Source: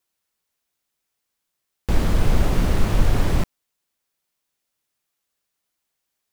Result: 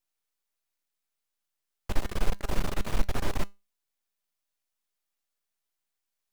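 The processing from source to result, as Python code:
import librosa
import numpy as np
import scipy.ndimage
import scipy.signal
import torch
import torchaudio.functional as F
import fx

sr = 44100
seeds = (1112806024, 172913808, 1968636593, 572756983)

y = fx.peak_eq(x, sr, hz=100.0, db=-8.5, octaves=2.9)
y = np.maximum(y, 0.0)
y = fx.comb_fb(y, sr, f0_hz=200.0, decay_s=0.25, harmonics='all', damping=0.0, mix_pct=40)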